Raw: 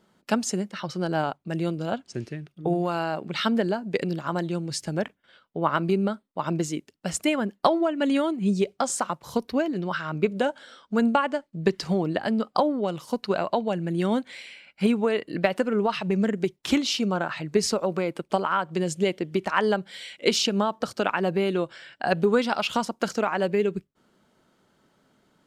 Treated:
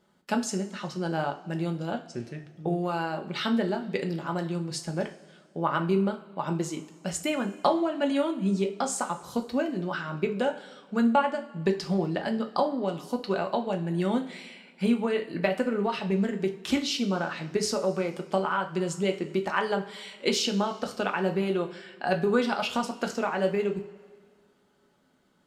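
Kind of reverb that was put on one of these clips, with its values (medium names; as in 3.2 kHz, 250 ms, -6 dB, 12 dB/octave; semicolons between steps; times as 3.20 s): two-slope reverb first 0.32 s, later 1.9 s, from -18 dB, DRR 3.5 dB; trim -4.5 dB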